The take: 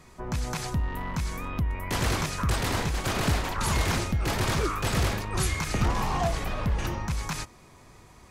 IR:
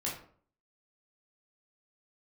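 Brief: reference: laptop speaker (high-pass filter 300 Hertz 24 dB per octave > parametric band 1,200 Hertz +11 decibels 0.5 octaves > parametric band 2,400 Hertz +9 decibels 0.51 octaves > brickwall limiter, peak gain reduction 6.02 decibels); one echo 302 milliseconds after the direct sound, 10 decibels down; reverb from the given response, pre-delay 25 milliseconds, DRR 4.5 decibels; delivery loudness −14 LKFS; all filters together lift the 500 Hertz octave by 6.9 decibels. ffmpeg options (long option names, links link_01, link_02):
-filter_complex "[0:a]equalizer=frequency=500:width_type=o:gain=8.5,aecho=1:1:302:0.316,asplit=2[link_01][link_02];[1:a]atrim=start_sample=2205,adelay=25[link_03];[link_02][link_03]afir=irnorm=-1:irlink=0,volume=-8dB[link_04];[link_01][link_04]amix=inputs=2:normalize=0,highpass=frequency=300:width=0.5412,highpass=frequency=300:width=1.3066,equalizer=frequency=1200:width_type=o:width=0.5:gain=11,equalizer=frequency=2400:width_type=o:width=0.51:gain=9,volume=10.5dB,alimiter=limit=-4dB:level=0:latency=1"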